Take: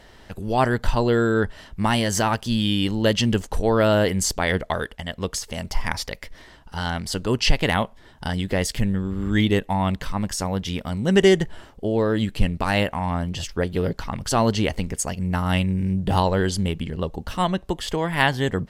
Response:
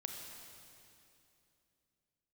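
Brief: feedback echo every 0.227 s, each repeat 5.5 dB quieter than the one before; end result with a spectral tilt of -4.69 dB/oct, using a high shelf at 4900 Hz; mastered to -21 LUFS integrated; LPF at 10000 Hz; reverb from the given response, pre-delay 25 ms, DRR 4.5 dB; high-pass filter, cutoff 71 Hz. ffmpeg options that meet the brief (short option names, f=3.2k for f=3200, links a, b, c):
-filter_complex "[0:a]highpass=71,lowpass=10k,highshelf=f=4.9k:g=-3,aecho=1:1:227|454|681|908|1135|1362|1589:0.531|0.281|0.149|0.079|0.0419|0.0222|0.0118,asplit=2[a][b];[1:a]atrim=start_sample=2205,adelay=25[c];[b][c]afir=irnorm=-1:irlink=0,volume=-3dB[d];[a][d]amix=inputs=2:normalize=0"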